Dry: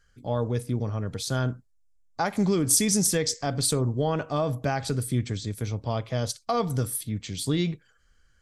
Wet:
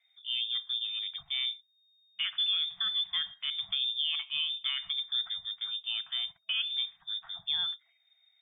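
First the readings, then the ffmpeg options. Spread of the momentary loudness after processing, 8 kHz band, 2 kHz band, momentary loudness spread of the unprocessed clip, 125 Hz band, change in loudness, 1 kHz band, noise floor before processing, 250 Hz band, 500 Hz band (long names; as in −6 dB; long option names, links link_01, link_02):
6 LU, below −40 dB, −3.0 dB, 10 LU, below −40 dB, −4.0 dB, −21.5 dB, −64 dBFS, below −40 dB, below −40 dB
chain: -af "lowpass=frequency=3100:width_type=q:width=0.5098,lowpass=frequency=3100:width_type=q:width=0.6013,lowpass=frequency=3100:width_type=q:width=0.9,lowpass=frequency=3100:width_type=q:width=2.563,afreqshift=-3700,afftfilt=real='re*(1-between(b*sr/4096,200,650))':imag='im*(1-between(b*sr/4096,200,650))':win_size=4096:overlap=0.75,volume=-6.5dB"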